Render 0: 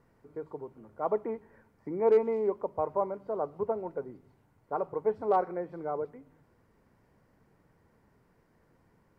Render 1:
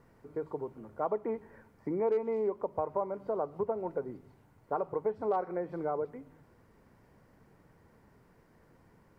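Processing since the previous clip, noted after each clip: compression 3:1, threshold -34 dBFS, peak gain reduction 11.5 dB; trim +4 dB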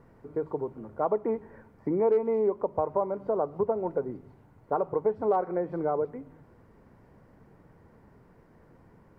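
treble shelf 2.2 kHz -10.5 dB; trim +6 dB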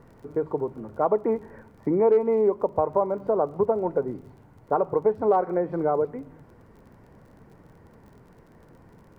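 crackle 30 per s -52 dBFS; trim +4.5 dB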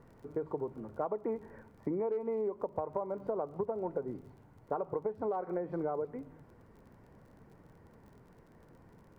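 compression 10:1, threshold -24 dBFS, peak gain reduction 9 dB; trim -6.5 dB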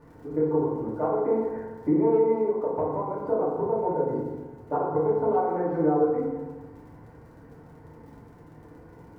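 FDN reverb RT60 1.3 s, low-frequency decay 1×, high-frequency decay 0.35×, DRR -8 dB

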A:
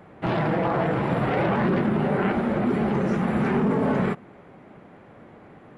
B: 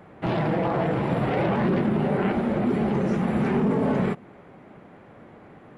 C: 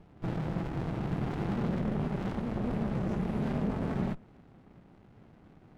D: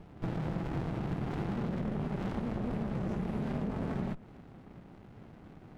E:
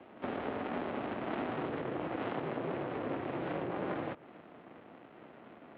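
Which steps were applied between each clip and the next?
dynamic bell 1.4 kHz, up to -4 dB, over -39 dBFS, Q 1.2
bass shelf 78 Hz +8 dB; sliding maximum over 65 samples; trim -7 dB
compression, threshold -36 dBFS, peak gain reduction 9 dB; trim +4.5 dB
mistuned SSB -82 Hz 350–3500 Hz; trim +5.5 dB

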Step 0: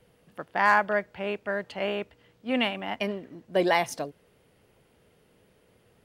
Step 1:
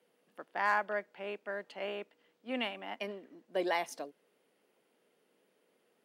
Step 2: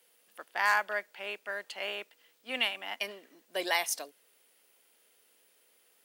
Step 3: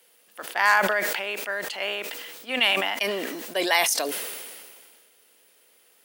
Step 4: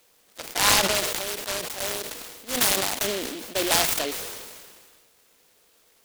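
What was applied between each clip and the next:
high-pass 230 Hz 24 dB/octave; trim -9 dB
tilt EQ +4.5 dB/octave; trim +2 dB
decay stretcher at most 31 dB/s; trim +7 dB
delay time shaken by noise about 2.9 kHz, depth 0.18 ms

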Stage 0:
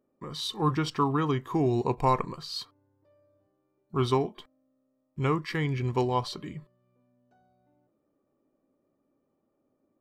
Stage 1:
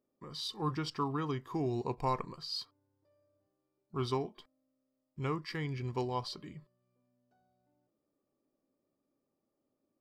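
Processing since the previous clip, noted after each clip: peaking EQ 4.9 kHz +10.5 dB 0.22 oct; trim -8.5 dB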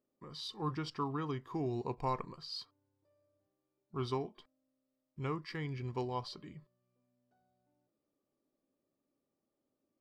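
treble shelf 8.5 kHz -10 dB; trim -2.5 dB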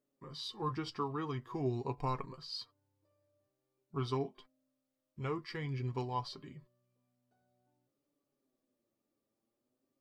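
flange 0.49 Hz, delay 6.8 ms, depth 2.7 ms, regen +34%; trim +4 dB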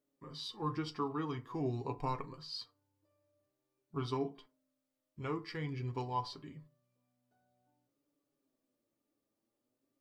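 FDN reverb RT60 0.34 s, low-frequency decay 1×, high-frequency decay 0.55×, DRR 9.5 dB; trim -1 dB

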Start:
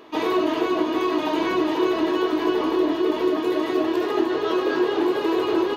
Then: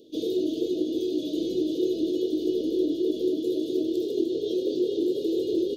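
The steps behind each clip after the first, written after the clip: Chebyshev band-stop 520–3400 Hz, order 4; trim -3 dB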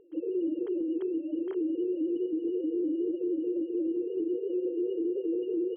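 formants replaced by sine waves; dynamic bell 190 Hz, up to +3 dB, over -35 dBFS, Q 1.3; peak limiter -22 dBFS, peak gain reduction 9.5 dB; trim -2 dB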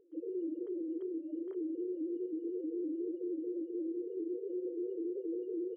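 resonances exaggerated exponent 1.5; trim -7.5 dB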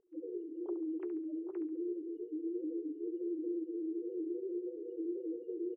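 formants replaced by sine waves; on a send: feedback delay 69 ms, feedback 32%, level -10.5 dB; on the sum: flange 0.39 Hz, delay 3.5 ms, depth 3.4 ms, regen -52%; trim +2.5 dB

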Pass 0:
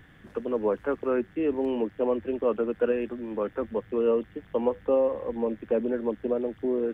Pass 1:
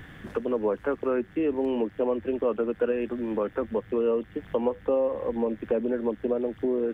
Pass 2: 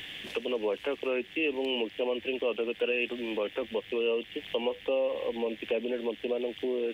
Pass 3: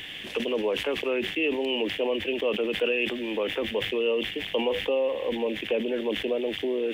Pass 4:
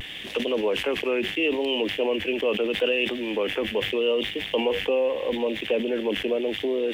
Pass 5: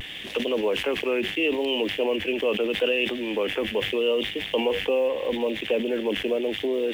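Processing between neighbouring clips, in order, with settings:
compression 2:1, threshold -38 dBFS, peak gain reduction 10.5 dB; trim +8.5 dB
resonant high shelf 2 kHz +12 dB, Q 3; in parallel at -1 dB: peak limiter -23.5 dBFS, peak gain reduction 9.5 dB; on the sum: tone controls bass -14 dB, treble -5 dB; trim -5 dB
decay stretcher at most 71 dB/s; trim +3 dB
in parallel at -10 dB: crossover distortion -46 dBFS; on the sum: vibrato 0.77 Hz 46 cents
block-companded coder 7-bit

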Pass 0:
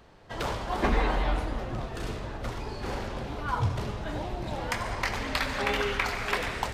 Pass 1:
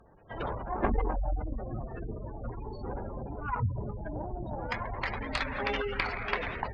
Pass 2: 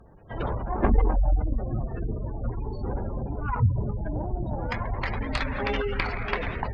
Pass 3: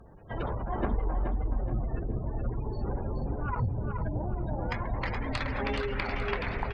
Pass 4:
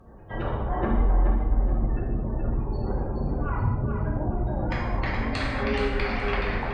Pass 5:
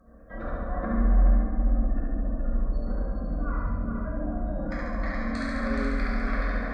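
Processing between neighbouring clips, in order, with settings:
spectral gate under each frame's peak -15 dB strong; Chebyshev shaper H 2 -8 dB, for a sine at -12.5 dBFS; trim -2.5 dB
bass shelf 320 Hz +8 dB; trim +1.5 dB
compression 2.5:1, threshold -30 dBFS, peak gain reduction 11 dB; feedback delay 424 ms, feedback 32%, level -6 dB
gated-style reverb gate 290 ms falling, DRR -3 dB
static phaser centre 580 Hz, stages 8; flutter echo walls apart 12 m, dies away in 1.2 s; trim -3 dB

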